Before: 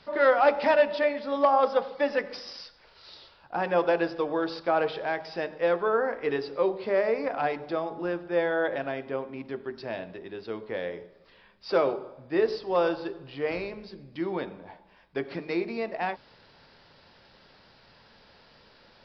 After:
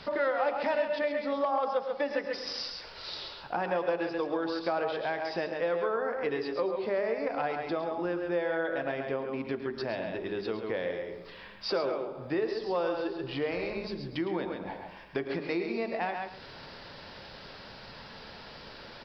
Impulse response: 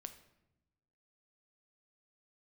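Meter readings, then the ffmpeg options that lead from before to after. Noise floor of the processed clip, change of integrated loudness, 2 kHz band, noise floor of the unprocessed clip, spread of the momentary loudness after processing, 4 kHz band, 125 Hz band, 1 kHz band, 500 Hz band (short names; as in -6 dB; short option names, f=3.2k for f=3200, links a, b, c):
-48 dBFS, -4.5 dB, -3.5 dB, -58 dBFS, 16 LU, +1.5 dB, -0.5 dB, -5.0 dB, -4.0 dB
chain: -filter_complex "[0:a]asplit=2[a][b];[b]aecho=0:1:134:0.422[c];[a][c]amix=inputs=2:normalize=0,acompressor=threshold=-42dB:ratio=3,asplit=2[d][e];[e]aecho=0:1:109:0.251[f];[d][f]amix=inputs=2:normalize=0,volume=9dB"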